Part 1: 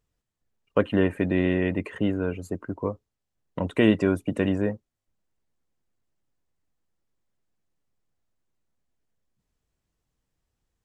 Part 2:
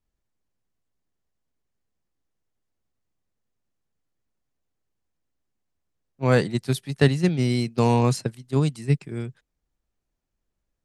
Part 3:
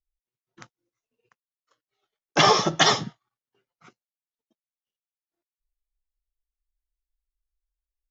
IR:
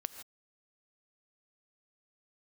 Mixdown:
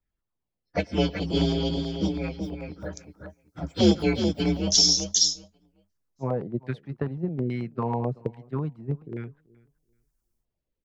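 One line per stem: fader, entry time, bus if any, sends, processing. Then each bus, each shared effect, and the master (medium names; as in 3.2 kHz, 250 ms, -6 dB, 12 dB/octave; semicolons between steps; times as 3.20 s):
-1.0 dB, 0.00 s, send -7.5 dB, echo send -4 dB, frequency axis rescaled in octaves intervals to 126%; graphic EQ 125/1000/2000/4000 Hz +5/+3/+5/+5 dB; upward expansion 1.5:1, over -37 dBFS
-5.0 dB, 0.00 s, no send, echo send -23.5 dB, compression 10:1, threshold -19 dBFS, peak gain reduction 9 dB; LFO low-pass saw down 1.2 Hz 430–2000 Hz
+2.5 dB, 2.35 s, no send, no echo send, inverse Chebyshev band-stop 100–2600 Hz, stop band 40 dB; level rider gain up to 9.5 dB; auto duck -11 dB, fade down 1.65 s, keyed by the second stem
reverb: on, pre-delay 3 ms
echo: feedback delay 381 ms, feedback 17%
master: LFO notch saw down 9.2 Hz 470–2000 Hz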